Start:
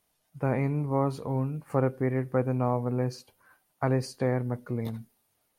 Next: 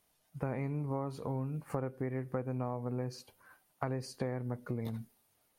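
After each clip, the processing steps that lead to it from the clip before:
downward compressor, threshold −33 dBFS, peak gain reduction 12.5 dB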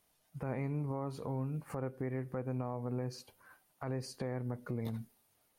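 brickwall limiter −28 dBFS, peak gain reduction 9 dB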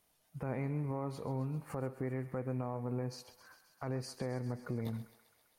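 feedback echo with a high-pass in the loop 132 ms, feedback 74%, high-pass 650 Hz, level −13 dB

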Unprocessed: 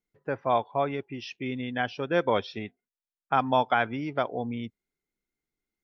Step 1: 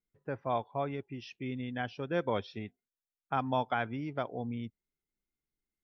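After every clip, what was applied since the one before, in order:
low-shelf EQ 210 Hz +9 dB
level −8.5 dB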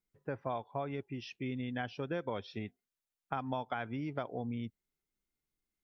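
downward compressor, threshold −34 dBFS, peak gain reduction 9 dB
level +1 dB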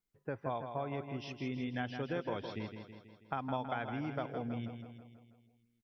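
repeating echo 162 ms, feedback 56%, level −7.5 dB
level −1 dB

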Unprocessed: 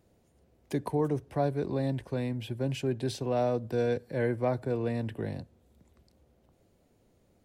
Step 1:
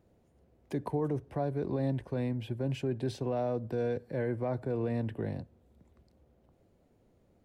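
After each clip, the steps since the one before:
high-shelf EQ 2,800 Hz −9.5 dB
brickwall limiter −23 dBFS, peak gain reduction 6 dB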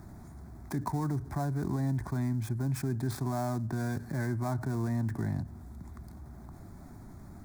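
gap after every zero crossing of 0.1 ms
phaser with its sweep stopped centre 1,200 Hz, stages 4
envelope flattener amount 50%
level +3 dB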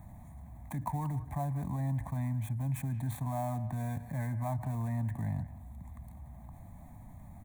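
phaser with its sweep stopped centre 1,400 Hz, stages 6
far-end echo of a speakerphone 180 ms, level −14 dB

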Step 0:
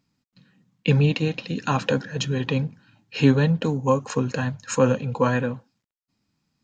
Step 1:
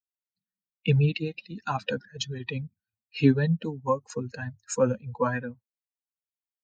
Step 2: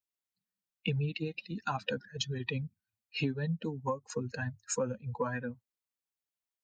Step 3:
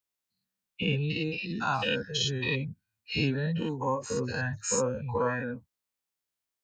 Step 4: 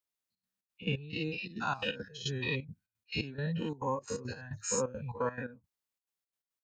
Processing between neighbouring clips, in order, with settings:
spectral dynamics exaggerated over time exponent 2; level −1 dB
downward compressor 6 to 1, threshold −30 dBFS, peak gain reduction 15.5 dB
every bin's largest magnitude spread in time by 120 ms
gate pattern "xxxx.xx.x.x.." 173 BPM −12 dB; level −4 dB

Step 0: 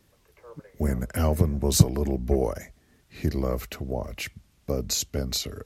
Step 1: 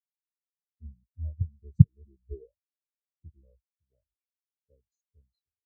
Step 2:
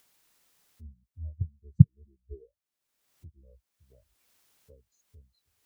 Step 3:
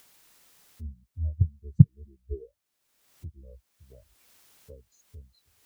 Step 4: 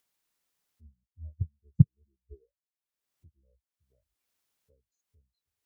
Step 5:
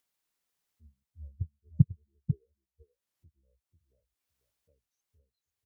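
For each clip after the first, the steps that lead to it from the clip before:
every bin expanded away from the loudest bin 4 to 1; level +1 dB
upward compression, threshold −38 dBFS; dynamic equaliser 170 Hz, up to +5 dB, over −32 dBFS, Q 0.75; level −4 dB
boost into a limiter +9.5 dB; level −1 dB
expander for the loud parts 1.5 to 1, over −43 dBFS; level −4 dB
single-tap delay 494 ms −8 dB; wow of a warped record 33 1/3 rpm, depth 160 cents; level −3 dB

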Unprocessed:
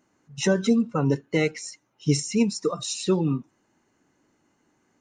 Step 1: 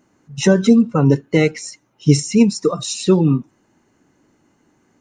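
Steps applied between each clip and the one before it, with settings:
low-shelf EQ 430 Hz +5 dB
level +5.5 dB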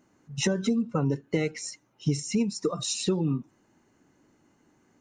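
downward compressor 5 to 1, threshold −18 dBFS, peak gain reduction 11 dB
level −5 dB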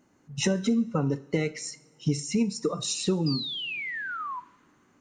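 sound drawn into the spectrogram fall, 0:03.26–0:04.40, 960–5,000 Hz −34 dBFS
coupled-rooms reverb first 0.48 s, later 3 s, from −22 dB, DRR 13 dB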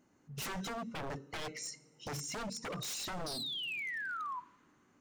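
wave folding −29.5 dBFS
level −5.5 dB

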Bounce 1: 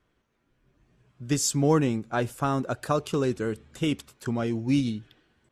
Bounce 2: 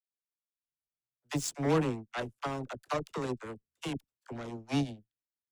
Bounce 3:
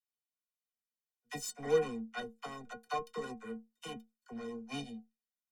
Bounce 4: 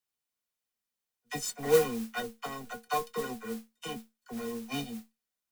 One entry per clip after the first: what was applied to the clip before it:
harmonic generator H 7 −17 dB, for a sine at −10.5 dBFS; all-pass dispersion lows, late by 48 ms, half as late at 450 Hz; level −6 dB
stiff-string resonator 220 Hz, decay 0.23 s, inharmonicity 0.03; level +7.5 dB
noise that follows the level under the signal 14 dB; level +5.5 dB

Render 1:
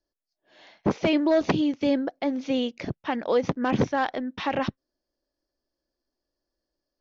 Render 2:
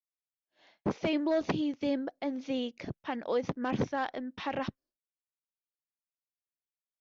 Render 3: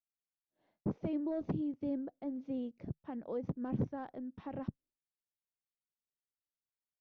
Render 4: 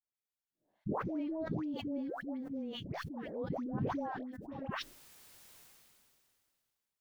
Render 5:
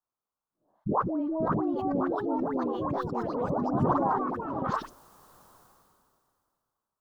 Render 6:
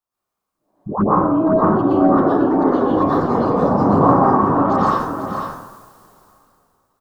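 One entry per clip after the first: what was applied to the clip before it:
downward expander −48 dBFS; level −7.5 dB
drawn EQ curve 150 Hz 0 dB, 1,300 Hz −16 dB, 2,400 Hz −23 dB, 4,500 Hz −26 dB
all-pass dispersion highs, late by 146 ms, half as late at 800 Hz; level that may fall only so fast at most 24 dB per second; level −2.5 dB
delay with pitch and tempo change per echo 676 ms, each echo +3 semitones, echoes 3; high shelf with overshoot 1,600 Hz −11.5 dB, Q 3; level +6.5 dB
single-tap delay 496 ms −6.5 dB; dense smooth reverb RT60 0.99 s, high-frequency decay 0.5×, pre-delay 105 ms, DRR −9.5 dB; level +2 dB

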